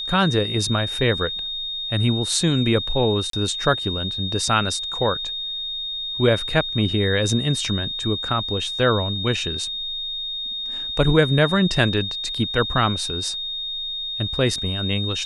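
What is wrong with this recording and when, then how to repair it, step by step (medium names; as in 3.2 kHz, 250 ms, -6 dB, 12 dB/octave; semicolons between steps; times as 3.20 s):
whine 3.7 kHz -26 dBFS
3.30–3.33 s: dropout 33 ms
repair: band-stop 3.7 kHz, Q 30; interpolate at 3.30 s, 33 ms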